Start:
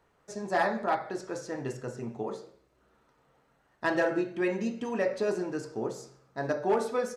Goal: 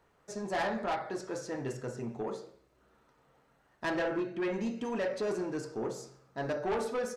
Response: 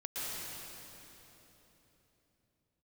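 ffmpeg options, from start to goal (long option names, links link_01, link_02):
-filter_complex "[0:a]asoftclip=type=tanh:threshold=-27.5dB,asettb=1/sr,asplit=3[link_01][link_02][link_03];[link_01]atrim=end=3.964[link_04];[link_02]atrim=start=3.96:end=4.54,asetpts=PTS-STARTPTS,afade=type=in:duration=0.004:curve=qsin,afade=type=out:start_time=0.576:duration=0.004:curve=qsin,highshelf=frequency=7300:gain=-11.5[link_05];[link_03]atrim=start=4.536[link_06];[link_04][link_05]acrossfade=duration=0.004:curve1=hsin:curve2=qsin[link_07];[link_07][link_06]acrossfade=duration=0.004:curve1=qsin:curve2=hsin"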